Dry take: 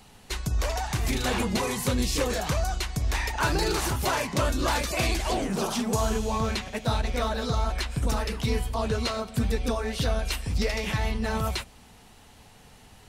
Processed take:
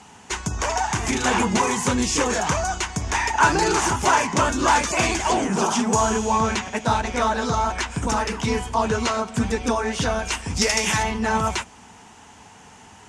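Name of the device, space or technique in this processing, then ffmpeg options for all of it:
car door speaker: -filter_complex "[0:a]highpass=100,equalizer=f=130:t=q:w=4:g=-7,equalizer=f=550:t=q:w=4:g=-5,equalizer=f=930:t=q:w=4:g=7,equalizer=f=1500:t=q:w=4:g=3,equalizer=f=4100:t=q:w=4:g=-9,equalizer=f=6600:t=q:w=4:g=6,lowpass=f=8800:w=0.5412,lowpass=f=8800:w=1.3066,asplit=3[s0][s1][s2];[s0]afade=t=out:st=10.56:d=0.02[s3];[s1]aemphasis=mode=production:type=75fm,afade=t=in:st=10.56:d=0.02,afade=t=out:st=11.02:d=0.02[s4];[s2]afade=t=in:st=11.02:d=0.02[s5];[s3][s4][s5]amix=inputs=3:normalize=0,volume=2.11"

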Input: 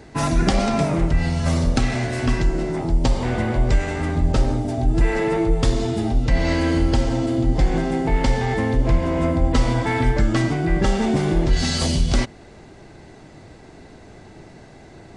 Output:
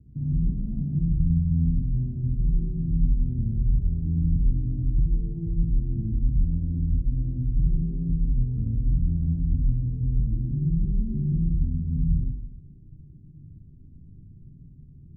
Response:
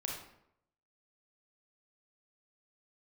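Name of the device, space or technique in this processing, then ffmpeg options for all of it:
club heard from the street: -filter_complex "[0:a]alimiter=limit=0.2:level=0:latency=1,lowpass=f=190:w=0.5412,lowpass=f=190:w=1.3066[s0];[1:a]atrim=start_sample=2205[s1];[s0][s1]afir=irnorm=-1:irlink=0,volume=0.841"

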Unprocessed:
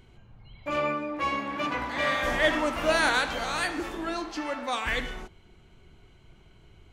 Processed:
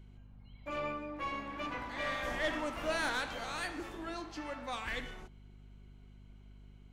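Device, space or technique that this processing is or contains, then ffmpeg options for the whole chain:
valve amplifier with mains hum: -af "aeval=exprs='(tanh(6.31*val(0)+0.35)-tanh(0.35))/6.31':c=same,aeval=exprs='val(0)+0.00562*(sin(2*PI*50*n/s)+sin(2*PI*2*50*n/s)/2+sin(2*PI*3*50*n/s)/3+sin(2*PI*4*50*n/s)/4+sin(2*PI*5*50*n/s)/5)':c=same,volume=0.376"

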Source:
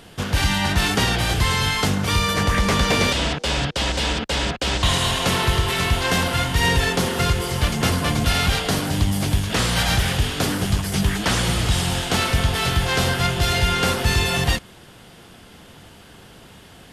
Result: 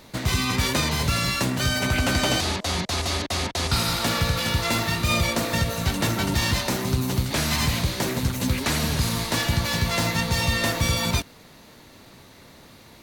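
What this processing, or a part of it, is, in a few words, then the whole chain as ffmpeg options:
nightcore: -af "asetrate=57330,aresample=44100,volume=0.668"

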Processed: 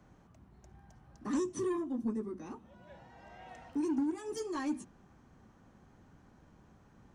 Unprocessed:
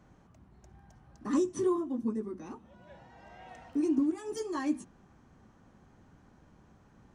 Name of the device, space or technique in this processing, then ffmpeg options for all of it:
one-band saturation: -filter_complex "[0:a]acrossover=split=210|2900[s0][s1][s2];[s1]asoftclip=type=tanh:threshold=0.0316[s3];[s0][s3][s2]amix=inputs=3:normalize=0,volume=0.891"

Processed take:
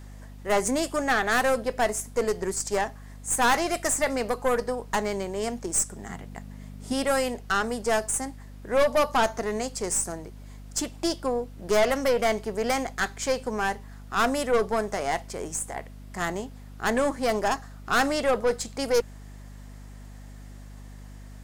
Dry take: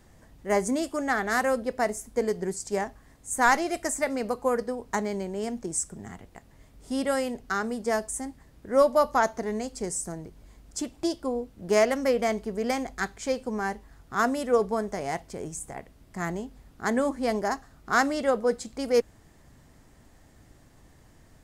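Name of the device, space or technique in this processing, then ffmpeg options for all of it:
valve amplifier with mains hum: -filter_complex "[0:a]highpass=f=550:p=1,aeval=exprs='(tanh(17.8*val(0)+0.35)-tanh(0.35))/17.8':c=same,aeval=exprs='val(0)+0.00316*(sin(2*PI*50*n/s)+sin(2*PI*2*50*n/s)/2+sin(2*PI*3*50*n/s)/3+sin(2*PI*4*50*n/s)/4+sin(2*PI*5*50*n/s)/5)':c=same,asettb=1/sr,asplit=3[s0][s1][s2];[s0]atrim=end=6.094[s3];[s1]atrim=start=6.09:end=6.93,asetpts=PTS-STARTPTS,afade=t=in:d=0.004:c=qsin,afade=t=out:st=0.836:d=0.004:c=qsin,equalizer=f=190:t=o:w=1.3:g=7.5[s4];[s2]atrim=start=6.926[s5];[s3][s4]acrossfade=d=0.004:c1=hsin:c2=qsin[s6];[s6][s5]acrossfade=d=0.004:c1=qsin:c2=hsin,volume=2.51"

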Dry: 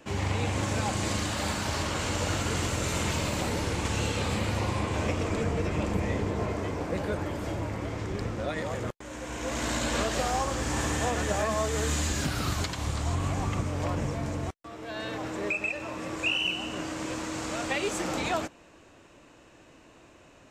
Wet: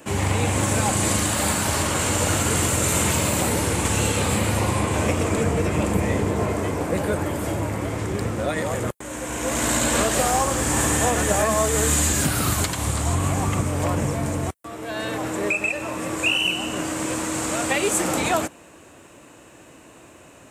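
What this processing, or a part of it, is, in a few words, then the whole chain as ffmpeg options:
budget condenser microphone: -af "highpass=67,highshelf=f=7100:t=q:w=1.5:g=9.5,volume=2.37"

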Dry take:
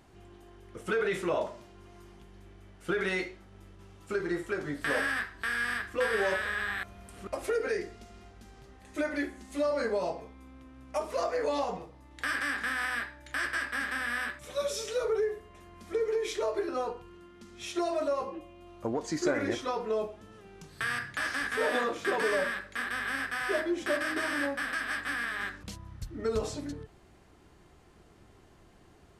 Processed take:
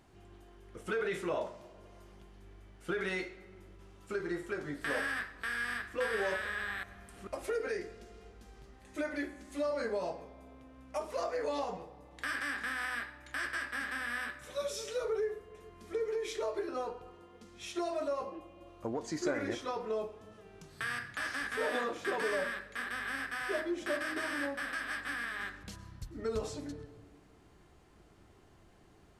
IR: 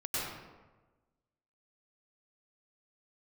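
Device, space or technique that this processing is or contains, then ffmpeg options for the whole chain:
ducked reverb: -filter_complex "[0:a]asplit=3[s0][s1][s2];[1:a]atrim=start_sample=2205[s3];[s1][s3]afir=irnorm=-1:irlink=0[s4];[s2]apad=whole_len=1287500[s5];[s4][s5]sidechaincompress=threshold=0.0112:ratio=8:attack=16:release=771,volume=0.237[s6];[s0][s6]amix=inputs=2:normalize=0,volume=0.562"

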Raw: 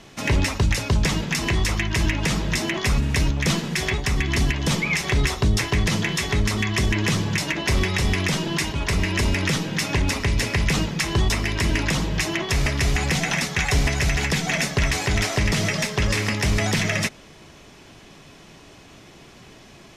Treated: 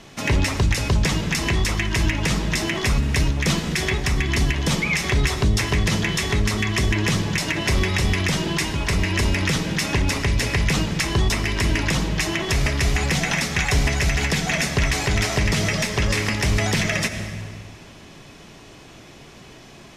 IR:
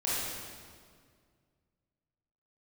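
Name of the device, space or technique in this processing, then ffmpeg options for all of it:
ducked reverb: -filter_complex "[0:a]asplit=3[s0][s1][s2];[1:a]atrim=start_sample=2205[s3];[s1][s3]afir=irnorm=-1:irlink=0[s4];[s2]apad=whole_len=880651[s5];[s4][s5]sidechaincompress=threshold=0.0447:ratio=8:attack=16:release=129,volume=0.224[s6];[s0][s6]amix=inputs=2:normalize=0"

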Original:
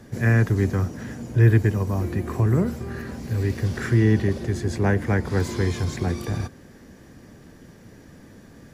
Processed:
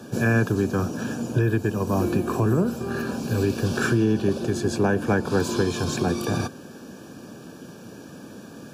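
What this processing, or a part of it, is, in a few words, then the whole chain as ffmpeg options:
PA system with an anti-feedback notch: -af "highpass=170,asuperstop=centerf=2000:order=8:qfactor=3.5,alimiter=limit=0.112:level=0:latency=1:release=347,volume=2.37"

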